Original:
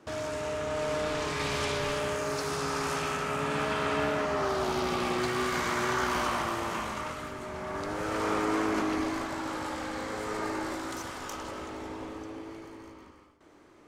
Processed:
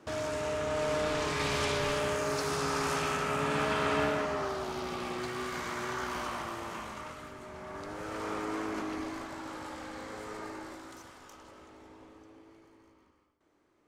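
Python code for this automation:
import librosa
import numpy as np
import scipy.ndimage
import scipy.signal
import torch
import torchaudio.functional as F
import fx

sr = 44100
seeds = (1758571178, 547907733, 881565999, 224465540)

y = fx.gain(x, sr, db=fx.line((4.02, 0.0), (4.66, -7.0), (10.19, -7.0), (11.33, -14.0)))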